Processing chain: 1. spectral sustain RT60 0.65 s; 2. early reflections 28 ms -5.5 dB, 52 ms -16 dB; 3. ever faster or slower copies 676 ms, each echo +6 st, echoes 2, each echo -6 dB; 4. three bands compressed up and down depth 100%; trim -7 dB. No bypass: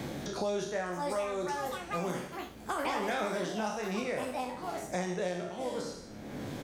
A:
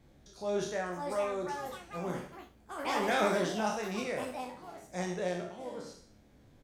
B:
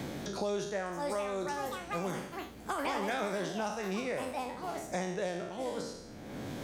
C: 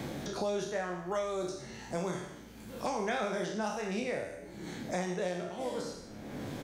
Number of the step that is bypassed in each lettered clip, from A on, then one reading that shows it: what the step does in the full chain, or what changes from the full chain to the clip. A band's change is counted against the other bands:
4, crest factor change +4.0 dB; 2, loudness change -1.0 LU; 3, loudness change -1.0 LU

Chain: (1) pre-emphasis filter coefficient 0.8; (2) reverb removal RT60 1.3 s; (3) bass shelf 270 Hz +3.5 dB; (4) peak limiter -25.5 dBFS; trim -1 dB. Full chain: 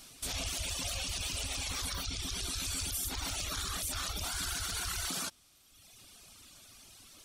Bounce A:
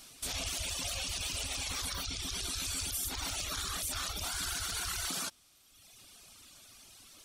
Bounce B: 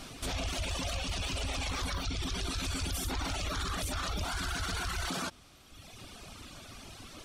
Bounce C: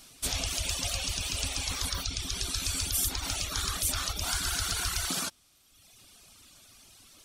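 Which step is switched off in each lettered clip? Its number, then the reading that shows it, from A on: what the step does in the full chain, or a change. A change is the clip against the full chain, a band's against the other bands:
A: 3, 125 Hz band -2.5 dB; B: 1, 8 kHz band -10.5 dB; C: 4, mean gain reduction 3.0 dB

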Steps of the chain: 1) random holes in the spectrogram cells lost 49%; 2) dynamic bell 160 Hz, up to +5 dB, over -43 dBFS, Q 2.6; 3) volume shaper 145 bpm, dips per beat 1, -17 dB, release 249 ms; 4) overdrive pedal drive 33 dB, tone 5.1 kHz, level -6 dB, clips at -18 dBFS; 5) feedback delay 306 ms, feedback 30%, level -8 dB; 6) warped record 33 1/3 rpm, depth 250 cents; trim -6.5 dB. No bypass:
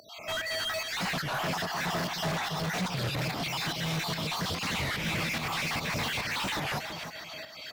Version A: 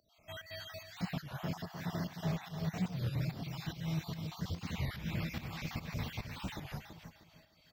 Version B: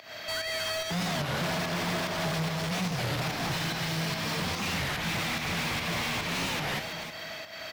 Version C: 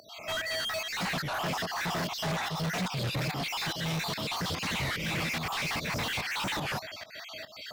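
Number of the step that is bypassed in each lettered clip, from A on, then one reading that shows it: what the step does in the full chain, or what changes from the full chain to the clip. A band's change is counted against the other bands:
4, 125 Hz band +13.0 dB; 1, 1 kHz band -2.0 dB; 5, crest factor change -1.5 dB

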